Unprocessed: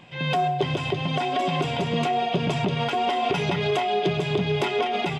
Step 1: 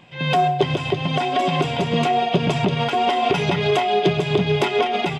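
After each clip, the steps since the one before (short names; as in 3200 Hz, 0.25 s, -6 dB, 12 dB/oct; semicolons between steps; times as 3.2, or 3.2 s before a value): upward expander 1.5:1, over -33 dBFS; gain +6.5 dB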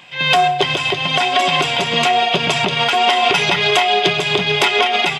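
tilt shelf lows -9 dB, about 650 Hz; gain +3 dB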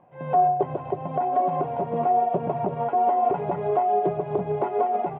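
ladder low-pass 910 Hz, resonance 30%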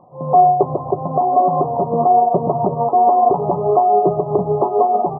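brick-wall FIR low-pass 1300 Hz; gain +8.5 dB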